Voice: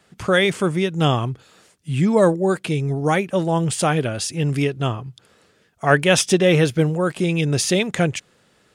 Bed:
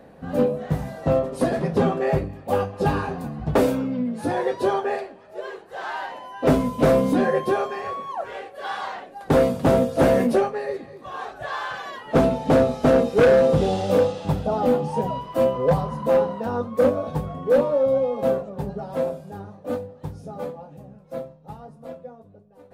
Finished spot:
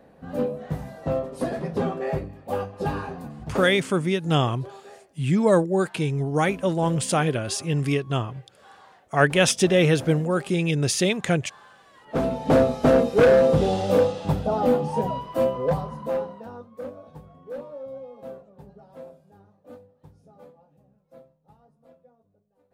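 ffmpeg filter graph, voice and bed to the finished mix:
ffmpeg -i stem1.wav -i stem2.wav -filter_complex "[0:a]adelay=3300,volume=-3dB[link_01];[1:a]volume=15dB,afade=type=out:start_time=3.21:duration=0.71:silence=0.16788,afade=type=in:start_time=11.92:duration=0.64:silence=0.0944061,afade=type=out:start_time=15.06:duration=1.61:silence=0.141254[link_02];[link_01][link_02]amix=inputs=2:normalize=0" out.wav

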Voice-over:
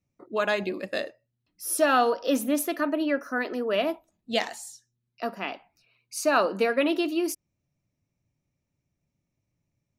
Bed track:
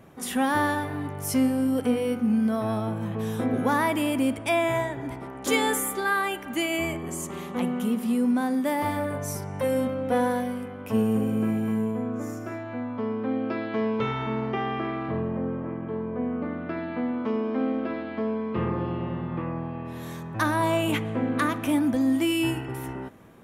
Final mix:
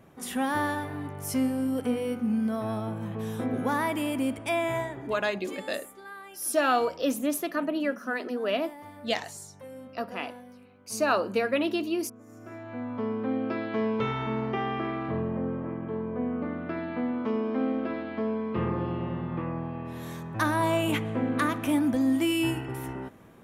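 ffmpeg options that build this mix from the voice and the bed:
ffmpeg -i stem1.wav -i stem2.wav -filter_complex "[0:a]adelay=4750,volume=-2.5dB[link_01];[1:a]volume=13.5dB,afade=type=out:start_time=4.8:duration=0.72:silence=0.177828,afade=type=in:start_time=12.26:duration=0.69:silence=0.133352[link_02];[link_01][link_02]amix=inputs=2:normalize=0" out.wav

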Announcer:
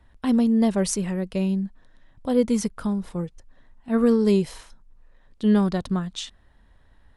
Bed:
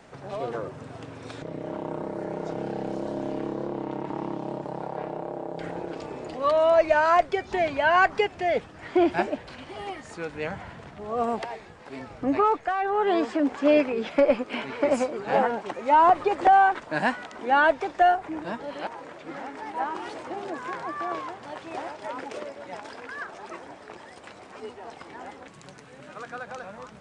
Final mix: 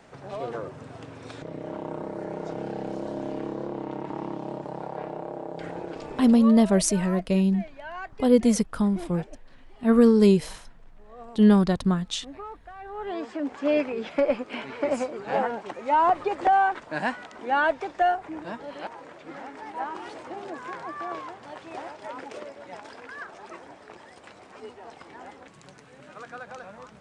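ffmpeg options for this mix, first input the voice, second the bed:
ffmpeg -i stem1.wav -i stem2.wav -filter_complex "[0:a]adelay=5950,volume=2dB[link_01];[1:a]volume=13.5dB,afade=type=out:start_time=6.22:duration=0.37:silence=0.149624,afade=type=in:start_time=12.72:duration=1.11:silence=0.177828[link_02];[link_01][link_02]amix=inputs=2:normalize=0" out.wav

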